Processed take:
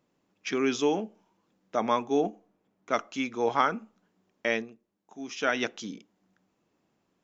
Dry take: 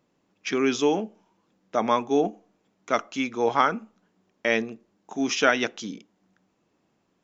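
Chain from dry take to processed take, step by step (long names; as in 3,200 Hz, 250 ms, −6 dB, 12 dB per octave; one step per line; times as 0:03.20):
0:01.85–0:02.98: one half of a high-frequency compander decoder only
0:04.47–0:05.60: duck −10 dB, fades 0.26 s
level −3.5 dB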